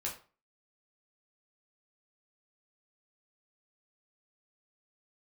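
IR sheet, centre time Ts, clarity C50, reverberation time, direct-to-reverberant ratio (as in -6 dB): 23 ms, 8.5 dB, 0.35 s, -3.5 dB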